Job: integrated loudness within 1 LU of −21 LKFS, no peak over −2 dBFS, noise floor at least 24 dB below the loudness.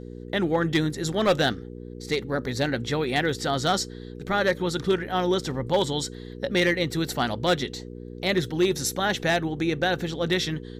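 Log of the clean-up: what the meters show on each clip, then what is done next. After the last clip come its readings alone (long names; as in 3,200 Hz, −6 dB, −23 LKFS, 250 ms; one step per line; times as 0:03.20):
share of clipped samples 0.3%; peaks flattened at −14.5 dBFS; mains hum 60 Hz; hum harmonics up to 480 Hz; level of the hum −36 dBFS; integrated loudness −25.5 LKFS; sample peak −14.5 dBFS; target loudness −21.0 LKFS
→ clipped peaks rebuilt −14.5 dBFS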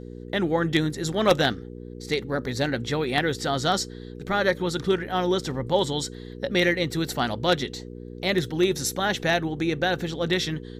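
share of clipped samples 0.0%; mains hum 60 Hz; hum harmonics up to 480 Hz; level of the hum −36 dBFS
→ hum removal 60 Hz, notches 8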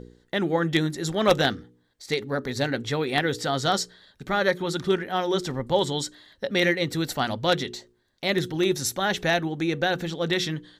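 mains hum none found; integrated loudness −25.5 LKFS; sample peak −5.0 dBFS; target loudness −21.0 LKFS
→ level +4.5 dB
brickwall limiter −2 dBFS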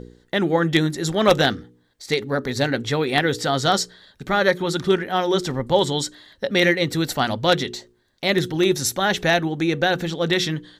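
integrated loudness −21.0 LKFS; sample peak −2.0 dBFS; background noise floor −61 dBFS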